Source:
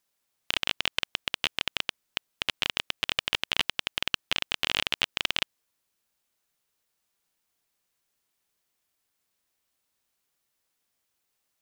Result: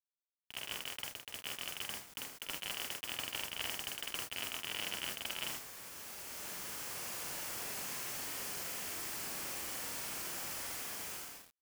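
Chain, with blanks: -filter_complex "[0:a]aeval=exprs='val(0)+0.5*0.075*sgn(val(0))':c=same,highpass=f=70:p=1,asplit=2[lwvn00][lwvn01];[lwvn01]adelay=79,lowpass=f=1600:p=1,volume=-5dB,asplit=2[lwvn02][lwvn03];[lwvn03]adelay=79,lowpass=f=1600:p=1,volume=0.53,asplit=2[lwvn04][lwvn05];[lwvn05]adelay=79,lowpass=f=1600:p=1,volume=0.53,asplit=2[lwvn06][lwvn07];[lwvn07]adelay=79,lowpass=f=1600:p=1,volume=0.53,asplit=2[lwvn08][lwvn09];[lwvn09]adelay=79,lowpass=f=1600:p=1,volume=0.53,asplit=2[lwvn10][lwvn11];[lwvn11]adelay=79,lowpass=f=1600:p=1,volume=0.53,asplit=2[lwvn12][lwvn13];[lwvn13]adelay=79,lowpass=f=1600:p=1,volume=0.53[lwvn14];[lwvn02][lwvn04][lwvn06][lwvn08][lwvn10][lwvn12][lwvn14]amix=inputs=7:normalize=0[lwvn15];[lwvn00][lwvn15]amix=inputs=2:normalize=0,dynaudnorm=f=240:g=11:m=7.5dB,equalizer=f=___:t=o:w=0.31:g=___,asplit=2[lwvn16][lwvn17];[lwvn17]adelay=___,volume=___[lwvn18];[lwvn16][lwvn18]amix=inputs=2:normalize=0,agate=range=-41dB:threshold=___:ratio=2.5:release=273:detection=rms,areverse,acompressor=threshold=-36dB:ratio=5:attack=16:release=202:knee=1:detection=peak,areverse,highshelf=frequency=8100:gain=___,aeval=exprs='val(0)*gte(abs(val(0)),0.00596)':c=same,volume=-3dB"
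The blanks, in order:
3800, -7.5, 47, -3.5dB, -14dB, -3.5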